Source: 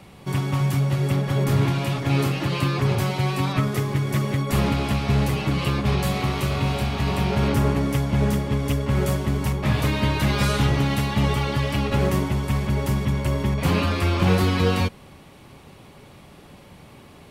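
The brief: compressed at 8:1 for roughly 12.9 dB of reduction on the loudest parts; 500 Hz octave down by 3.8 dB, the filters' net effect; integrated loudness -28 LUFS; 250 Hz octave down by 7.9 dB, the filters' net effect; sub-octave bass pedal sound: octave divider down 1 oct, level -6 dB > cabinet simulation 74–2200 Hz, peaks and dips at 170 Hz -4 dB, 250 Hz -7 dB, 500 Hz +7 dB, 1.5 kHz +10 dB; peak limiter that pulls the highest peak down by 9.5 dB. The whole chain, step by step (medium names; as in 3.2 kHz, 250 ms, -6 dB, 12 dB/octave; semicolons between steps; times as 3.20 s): peaking EQ 250 Hz -7.5 dB; peaking EQ 500 Hz -6 dB; compression 8:1, threshold -32 dBFS; peak limiter -31 dBFS; octave divider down 1 oct, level -6 dB; cabinet simulation 74–2200 Hz, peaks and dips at 170 Hz -4 dB, 250 Hz -7 dB, 500 Hz +7 dB, 1.5 kHz +10 dB; trim +12.5 dB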